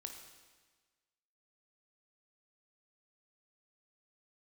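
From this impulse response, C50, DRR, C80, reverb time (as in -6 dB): 5.5 dB, 3.5 dB, 7.0 dB, 1.4 s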